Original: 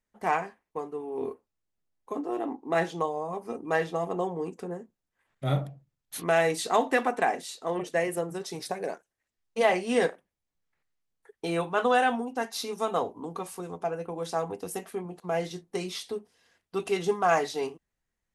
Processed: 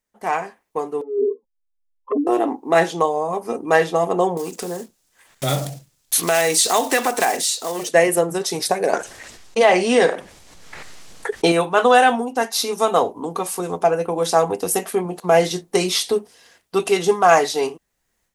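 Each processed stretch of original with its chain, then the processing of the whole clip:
1.01–2.27 s: spectral contrast enhancement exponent 3 + touch-sensitive flanger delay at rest 4.1 ms, full sweep at -30.5 dBFS
4.37–7.88 s: block-companded coder 5-bit + peaking EQ 6.8 kHz +9 dB 2.4 oct + compression 2:1, threshold -41 dBFS
8.93–11.52 s: low-pass 7.7 kHz + level flattener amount 50%
whole clip: peaking EQ 610 Hz +5.5 dB 2.7 oct; level rider gain up to 15 dB; treble shelf 3.1 kHz +10.5 dB; trim -2.5 dB

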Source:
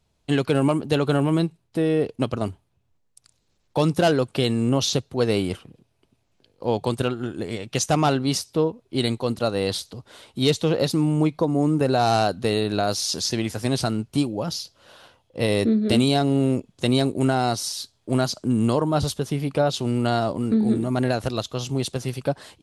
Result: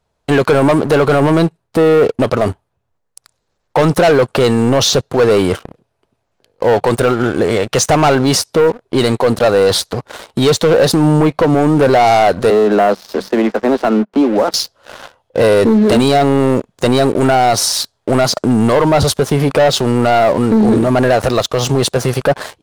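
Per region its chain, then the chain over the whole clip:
12.50–14.54 s: Chebyshev high-pass 190 Hz, order 10 + tape spacing loss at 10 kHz 37 dB
whole clip: high-order bell 880 Hz +8 dB 2.4 oct; waveshaping leveller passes 3; loudness maximiser +9 dB; trim -4.5 dB

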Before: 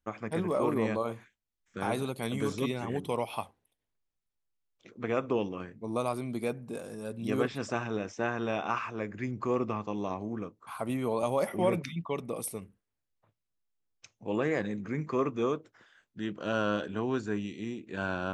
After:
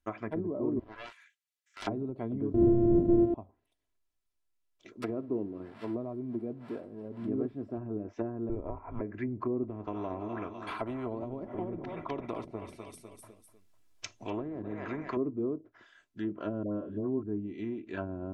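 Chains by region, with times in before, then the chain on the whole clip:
0.79–1.87 s: high-pass 1.4 kHz 24 dB/octave + loudspeaker Doppler distortion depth 0.99 ms
2.54–3.34 s: sorted samples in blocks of 128 samples + waveshaping leveller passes 5 + high-order bell 1.4 kHz -9 dB
5.02–7.78 s: zero-crossing glitches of -22 dBFS + high-pass 100 Hz 6 dB/octave + peaking EQ 6.4 kHz -14 dB 0.2 oct
8.49–9.01 s: low-pass 2.7 kHz + frequency shift -210 Hz
9.63–15.17 s: feedback delay 250 ms, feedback 40%, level -15 dB + spectrum-flattening compressor 2:1
16.63–17.23 s: small resonant body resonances 560/1100/3600 Hz, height 10 dB, ringing for 60 ms + phase dispersion highs, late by 147 ms, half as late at 1.3 kHz
whole clip: low-pass that closes with the level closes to 350 Hz, closed at -28.5 dBFS; comb 3 ms, depth 51%

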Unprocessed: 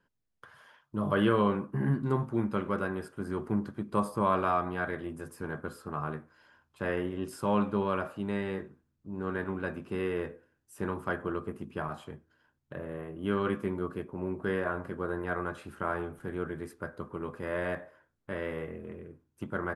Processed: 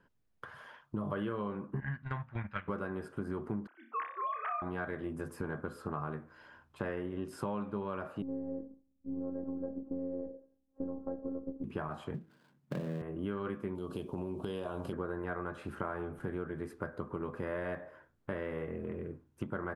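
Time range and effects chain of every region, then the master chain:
1.80–2.68 s: gate -30 dBFS, range -11 dB + FFT filter 100 Hz 0 dB, 380 Hz -22 dB, 640 Hz -5 dB, 1.2 kHz -3 dB, 1.7 kHz +10 dB, 2.8 kHz +7 dB, 11 kHz -19 dB
3.67–4.62 s: formants replaced by sine waves + high-pass 1.5 kHz + flutter echo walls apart 5.2 m, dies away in 0.33 s
8.22–11.64 s: Chebyshev low-pass 610 Hz, order 3 + robot voice 269 Hz
12.14–13.02 s: dead-time distortion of 0.21 ms + high-pass 120 Hz 24 dB/octave + peaking EQ 180 Hz +12.5 dB 0.83 oct
13.75–14.93 s: FFT filter 930 Hz 0 dB, 1.9 kHz -13 dB, 3 kHz +13 dB + compression 3:1, threshold -35 dBFS
whole clip: treble shelf 3.3 kHz -9.5 dB; compression 6:1, threshold -41 dBFS; trim +6.5 dB

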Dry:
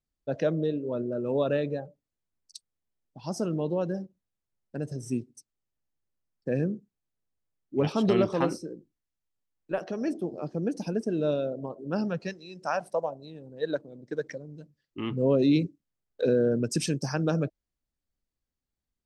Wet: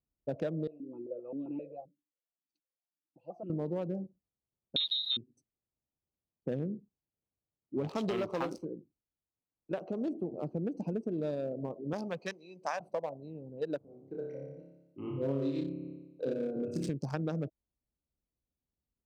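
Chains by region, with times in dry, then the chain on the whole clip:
0.67–3.50 s: comb 5.9 ms, depth 57% + stepped vowel filter 7.6 Hz
4.76–5.17 s: waveshaping leveller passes 3 + peaking EQ 140 Hz +6.5 dB 2.5 oct + frequency inversion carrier 3.9 kHz
7.89–8.65 s: bass shelf 430 Hz -11 dB + waveshaping leveller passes 2
11.93–12.80 s: tilt shelf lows -9 dB, about 670 Hz + comb of notches 1.4 kHz
13.78–16.89 s: hum notches 60/120/180/240/300/360/420/480/540 Hz + flutter echo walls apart 5 m, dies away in 1 s + upward expansion, over -29 dBFS
whole clip: local Wiener filter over 25 samples; high-pass 41 Hz; compression, threshold -31 dBFS

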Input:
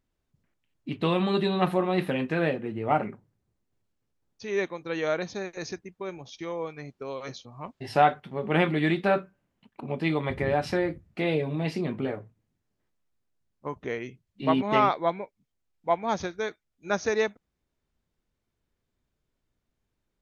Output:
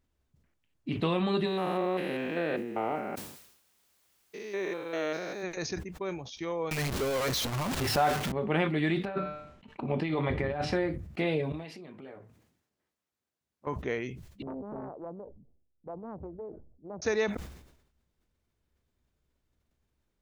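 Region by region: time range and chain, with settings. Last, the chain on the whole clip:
1.45–5.42 s: spectrogram pixelated in time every 200 ms + high-pass 250 Hz + added noise white -70 dBFS
6.71–8.32 s: jump at every zero crossing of -25.5 dBFS + transformer saturation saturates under 580 Hz
9.05–10.73 s: de-hum 149.9 Hz, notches 36 + compressor with a negative ratio -28 dBFS, ratio -0.5 + distance through air 73 m
11.52–13.67 s: compression 4:1, threshold -43 dBFS + high-pass 290 Hz 6 dB/octave
14.42–17.02 s: inverse Chebyshev low-pass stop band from 3.4 kHz, stop band 80 dB + compression 2.5:1, threshold -42 dBFS + loudspeaker Doppler distortion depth 0.63 ms
whole clip: compression 2:1, threshold -27 dBFS; peaking EQ 69 Hz +10 dB 0.28 oct; decay stretcher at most 70 dB/s

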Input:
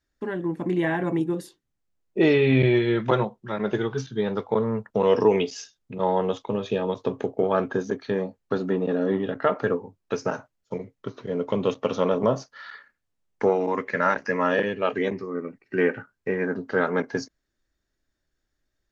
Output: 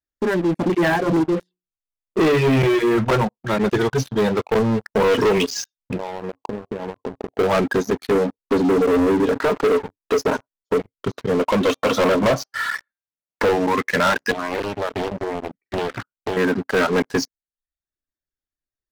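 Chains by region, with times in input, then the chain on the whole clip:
0.68–3.24 s: low-pass 2.5 kHz + hum notches 60/120/180/240/300/360/420/480 Hz
4.98–5.38 s: high-pass 60 Hz 24 dB/octave + phase dispersion highs, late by 63 ms, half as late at 2.8 kHz
5.96–7.35 s: rippled Chebyshev low-pass 1.1 kHz, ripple 3 dB + compression 8:1, threshold -35 dBFS
8.11–10.80 s: compression 2:1, threshold -28 dBFS + small resonant body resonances 300/420/970 Hz, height 12 dB
11.39–13.49 s: comb of notches 410 Hz + de-hum 397.1 Hz, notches 33 + overdrive pedal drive 14 dB, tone 2.7 kHz, clips at -10 dBFS
14.31–16.37 s: distance through air 220 m + compression 5:1, threshold -31 dBFS + loudspeaker Doppler distortion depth 0.9 ms
whole clip: reverb removal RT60 0.63 s; waveshaping leveller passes 5; trim -6 dB

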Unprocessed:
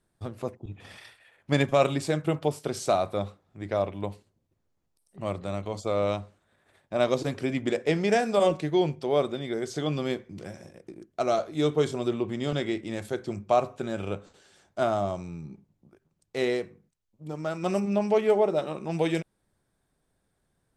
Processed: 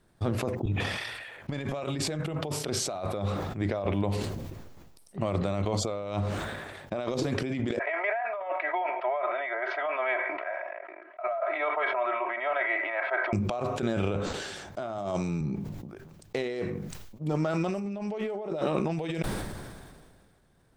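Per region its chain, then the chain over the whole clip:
7.79–13.33 s: elliptic band-pass 650–2200 Hz, stop band 60 dB + comb 3.1 ms, depth 90%
14.98–15.41 s: high-pass 130 Hz + treble shelf 4.5 kHz +6.5 dB
whole clip: compressor with a negative ratio -35 dBFS, ratio -1; peaking EQ 9.8 kHz -6 dB 1.2 oct; decay stretcher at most 31 dB/s; trim +3 dB

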